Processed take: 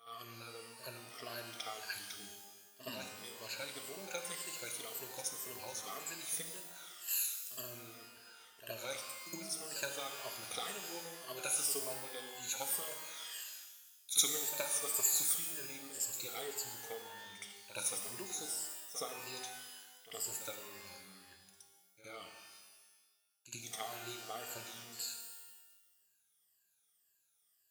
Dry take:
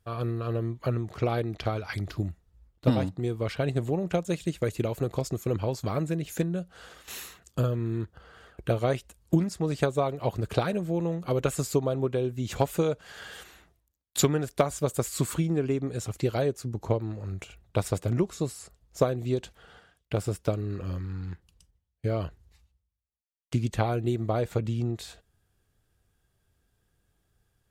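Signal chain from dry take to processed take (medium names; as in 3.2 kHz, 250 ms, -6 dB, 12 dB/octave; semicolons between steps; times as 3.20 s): drifting ripple filter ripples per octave 1.4, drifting -1.9 Hz, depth 19 dB; differentiator; reverse echo 68 ms -12.5 dB; pitch-shifted reverb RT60 1.2 s, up +12 st, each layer -2 dB, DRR 4.5 dB; trim -1.5 dB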